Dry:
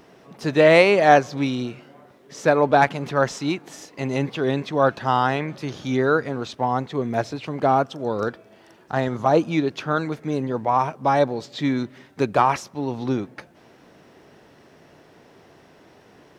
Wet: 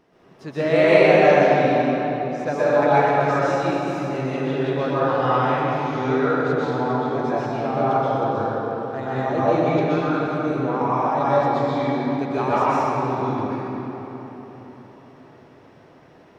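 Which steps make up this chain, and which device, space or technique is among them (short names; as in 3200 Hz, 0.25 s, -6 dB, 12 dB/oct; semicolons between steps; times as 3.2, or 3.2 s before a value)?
swimming-pool hall (reverb RT60 4.1 s, pre-delay 0.116 s, DRR -11 dB; high shelf 4400 Hz -7 dB); gain -10 dB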